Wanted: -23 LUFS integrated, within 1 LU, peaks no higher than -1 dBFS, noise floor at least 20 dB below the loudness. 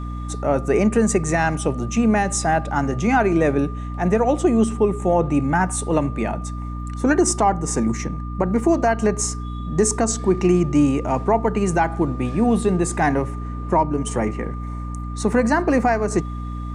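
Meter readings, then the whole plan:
hum 60 Hz; harmonics up to 300 Hz; hum level -26 dBFS; steady tone 1200 Hz; tone level -37 dBFS; loudness -20.5 LUFS; peak -6.0 dBFS; loudness target -23.0 LUFS
-> notches 60/120/180/240/300 Hz; notch 1200 Hz, Q 30; gain -2.5 dB

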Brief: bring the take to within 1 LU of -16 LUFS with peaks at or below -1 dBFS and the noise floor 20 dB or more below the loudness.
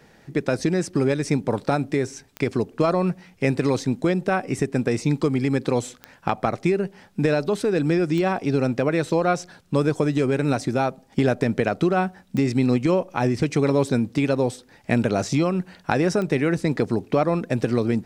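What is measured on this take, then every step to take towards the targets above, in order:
clicks 5; loudness -23.0 LUFS; peak -4.5 dBFS; loudness target -16.0 LUFS
-> de-click; gain +7 dB; limiter -1 dBFS

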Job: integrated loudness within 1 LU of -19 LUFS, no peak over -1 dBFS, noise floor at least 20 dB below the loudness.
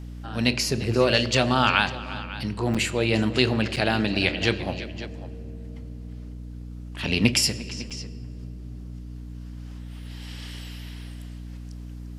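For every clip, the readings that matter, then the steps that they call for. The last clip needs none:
dropouts 3; longest dropout 6.4 ms; hum 60 Hz; harmonics up to 300 Hz; hum level -35 dBFS; loudness -24.0 LUFS; peak -1.5 dBFS; loudness target -19.0 LUFS
-> interpolate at 2.74/3.76/7.9, 6.4 ms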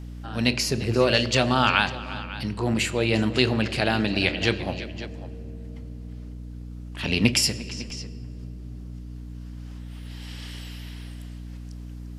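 dropouts 0; hum 60 Hz; harmonics up to 300 Hz; hum level -35 dBFS
-> notches 60/120/180/240/300 Hz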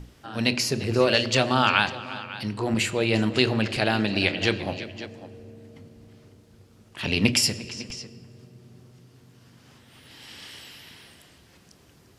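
hum none; loudness -24.0 LUFS; peak -2.5 dBFS; loudness target -19.0 LUFS
-> gain +5 dB; limiter -1 dBFS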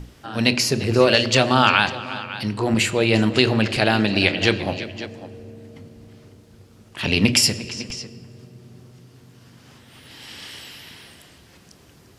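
loudness -19.0 LUFS; peak -1.0 dBFS; noise floor -51 dBFS

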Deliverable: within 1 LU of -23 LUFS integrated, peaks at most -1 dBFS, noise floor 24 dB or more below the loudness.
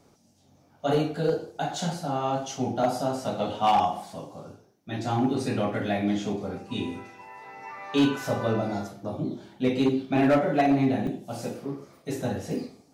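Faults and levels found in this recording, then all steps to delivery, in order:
clipped 0.6%; flat tops at -15.5 dBFS; dropouts 1; longest dropout 1.6 ms; loudness -27.5 LUFS; peak -15.5 dBFS; loudness target -23.0 LUFS
-> clip repair -15.5 dBFS; interpolate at 11.07, 1.6 ms; gain +4.5 dB

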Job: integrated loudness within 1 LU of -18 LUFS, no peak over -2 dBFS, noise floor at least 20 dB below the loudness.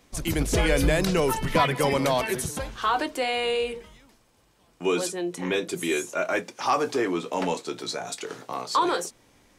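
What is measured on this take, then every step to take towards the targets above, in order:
loudness -26.0 LUFS; peak -9.0 dBFS; loudness target -18.0 LUFS
-> gain +8 dB; limiter -2 dBFS

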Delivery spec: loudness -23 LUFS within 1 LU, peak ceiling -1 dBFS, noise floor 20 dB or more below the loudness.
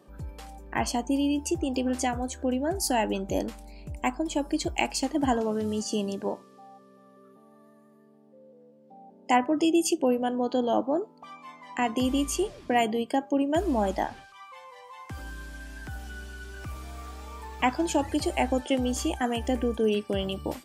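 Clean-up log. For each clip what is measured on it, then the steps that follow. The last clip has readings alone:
loudness -27.5 LUFS; peak -6.5 dBFS; loudness target -23.0 LUFS
-> gain +4.5 dB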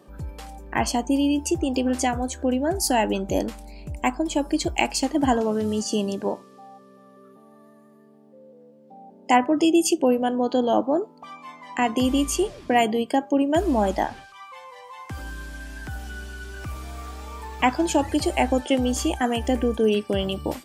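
loudness -23.0 LUFS; peak -2.0 dBFS; noise floor -51 dBFS

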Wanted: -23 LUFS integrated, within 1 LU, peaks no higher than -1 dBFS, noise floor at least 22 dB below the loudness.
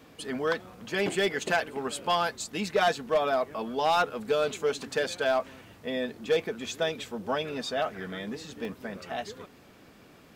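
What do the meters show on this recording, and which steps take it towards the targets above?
clipped 0.5%; flat tops at -18.0 dBFS; dropouts 1; longest dropout 1.2 ms; loudness -29.5 LUFS; peak -18.0 dBFS; loudness target -23.0 LUFS
-> clip repair -18 dBFS; interpolate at 8.65, 1.2 ms; gain +6.5 dB

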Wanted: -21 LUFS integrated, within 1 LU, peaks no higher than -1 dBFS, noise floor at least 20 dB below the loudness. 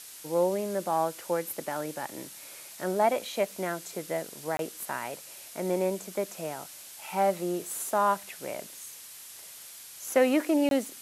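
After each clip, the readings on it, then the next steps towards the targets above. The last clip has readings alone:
dropouts 2; longest dropout 22 ms; noise floor -47 dBFS; noise floor target -50 dBFS; loudness -30.0 LUFS; peak -10.5 dBFS; loudness target -21.0 LUFS
-> interpolate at 4.57/10.69, 22 ms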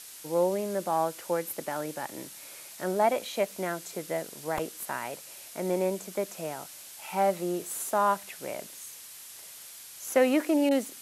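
dropouts 0; noise floor -47 dBFS; noise floor target -50 dBFS
-> denoiser 6 dB, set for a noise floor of -47 dBFS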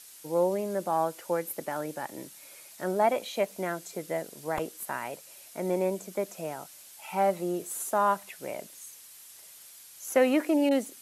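noise floor -51 dBFS; loudness -30.0 LUFS; peak -10.5 dBFS; loudness target -21.0 LUFS
-> gain +9 dB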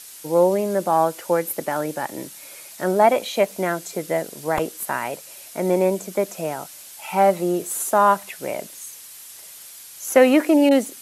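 loudness -21.0 LUFS; peak -1.5 dBFS; noise floor -42 dBFS

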